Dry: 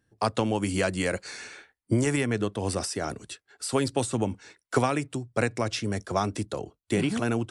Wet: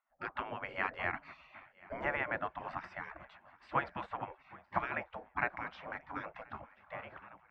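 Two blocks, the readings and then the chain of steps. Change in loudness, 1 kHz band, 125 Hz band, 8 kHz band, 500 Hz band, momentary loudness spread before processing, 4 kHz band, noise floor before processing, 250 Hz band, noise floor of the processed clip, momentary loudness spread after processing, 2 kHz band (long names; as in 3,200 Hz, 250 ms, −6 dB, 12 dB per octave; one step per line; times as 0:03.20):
−11.5 dB, −6.0 dB, −21.5 dB, below −40 dB, −15.5 dB, 10 LU, −19.5 dB, −83 dBFS, −21.5 dB, −68 dBFS, 18 LU, −4.0 dB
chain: fade-out on the ending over 1.51 s
low-pass filter 1,900 Hz 24 dB per octave
parametric band 440 Hz +9.5 dB 1 octave
feedback echo with a long and a short gap by turns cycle 1,032 ms, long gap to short 3 to 1, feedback 44%, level −23 dB
gate on every frequency bin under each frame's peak −20 dB weak
level +2 dB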